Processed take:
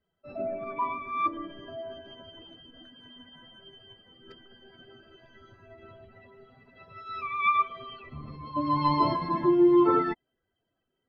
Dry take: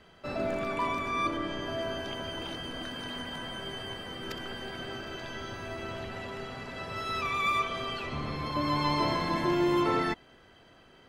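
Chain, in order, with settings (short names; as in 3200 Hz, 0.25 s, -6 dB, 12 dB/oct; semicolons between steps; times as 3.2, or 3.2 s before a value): spectral contrast raised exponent 1.9; upward expander 2.5:1, over -46 dBFS; gain +8 dB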